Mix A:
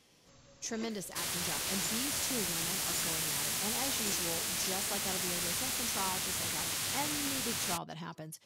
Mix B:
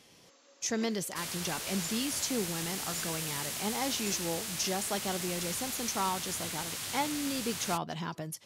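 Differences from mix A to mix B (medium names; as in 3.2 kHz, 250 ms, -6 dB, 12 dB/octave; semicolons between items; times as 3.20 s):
speech +6.0 dB; first sound: add steep high-pass 280 Hz 36 dB/octave; second sound -3.0 dB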